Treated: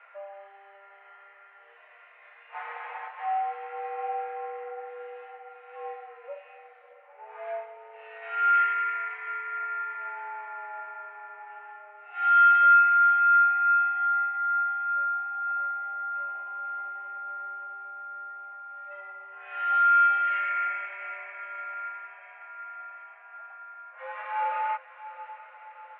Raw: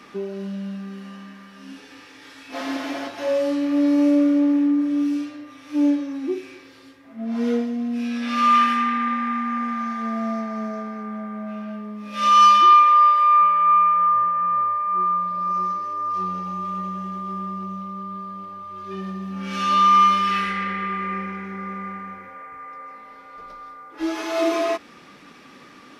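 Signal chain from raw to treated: echo that smears into a reverb 685 ms, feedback 57%, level -14 dB; mistuned SSB +200 Hz 470–2200 Hz; trim -5.5 dB

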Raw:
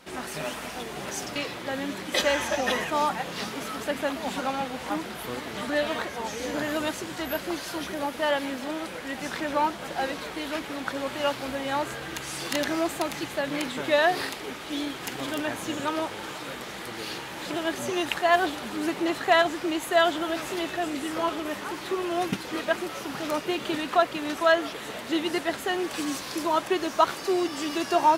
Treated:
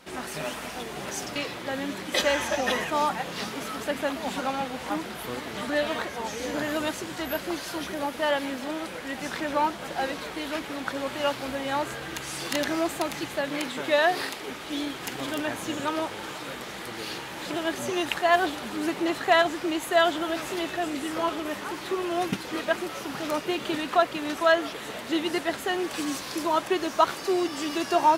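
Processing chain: 13.46–14.48 s: bass shelf 140 Hz -7 dB

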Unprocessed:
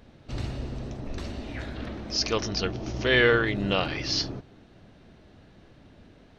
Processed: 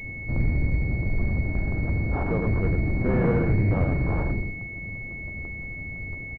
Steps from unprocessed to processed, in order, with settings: octave divider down 1 oct, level +3 dB; bass shelf 170 Hz +9 dB; in parallel at +3 dB: compression, threshold -30 dBFS, peak gain reduction 16 dB; on the sum: saturation -13.5 dBFS, distortion -15 dB; on a send: delay 98 ms -5 dB; on the sum: crackling interface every 0.17 s, samples 512, repeat, from 0.34 s; class-D stage that switches slowly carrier 2.2 kHz; trim -3.5 dB

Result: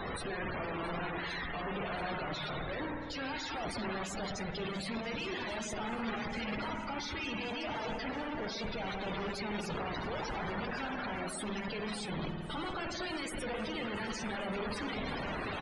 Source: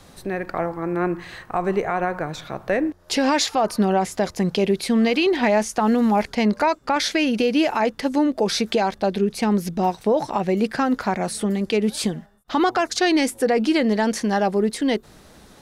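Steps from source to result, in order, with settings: tilt shelf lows -8.5 dB, about 1.2 kHz; hum notches 50/100/150/200/250/300/350 Hz; reverse; compression 8:1, threshold -29 dBFS, peak gain reduction 17.5 dB; reverse; Schmitt trigger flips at -45 dBFS; spring tank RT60 2.1 s, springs 52 ms, chirp 40 ms, DRR 0 dB; integer overflow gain 25.5 dB; loudest bins only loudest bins 64; on a send: shuffle delay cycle 1130 ms, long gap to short 1.5:1, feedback 64%, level -20 dB; on the sum: resampled via 22.05 kHz; trim -4 dB

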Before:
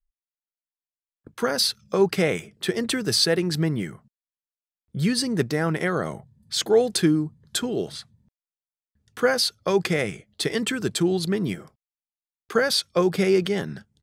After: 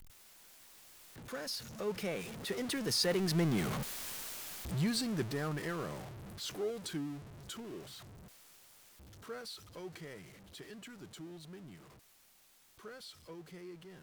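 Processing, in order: jump at every zero crossing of -23 dBFS; Doppler pass-by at 3.92 s, 24 m/s, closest 14 m; trim -7.5 dB

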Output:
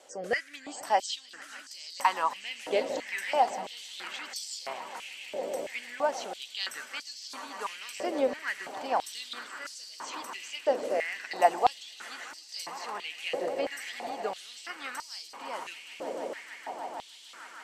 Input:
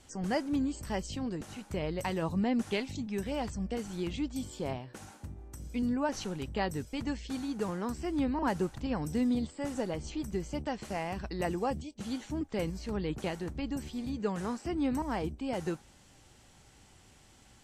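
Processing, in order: rotary cabinet horn 0.85 Hz; echo with a slow build-up 153 ms, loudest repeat 8, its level -17.5 dB; step-sequenced high-pass 3 Hz 550–4800 Hz; trim +5.5 dB

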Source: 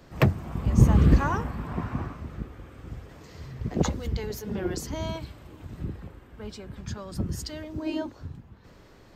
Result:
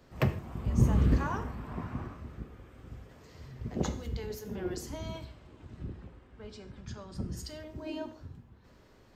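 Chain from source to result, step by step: 5.25–7.37 s: low-pass 7.3 kHz 12 dB/octave; gated-style reverb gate 180 ms falling, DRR 7.5 dB; trim -7.5 dB

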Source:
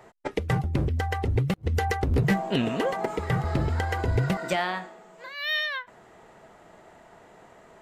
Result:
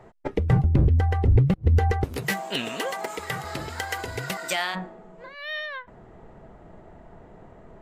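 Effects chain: tilt EQ -2.5 dB/octave, from 2.03 s +3.5 dB/octave, from 4.74 s -4 dB/octave; trim -1 dB

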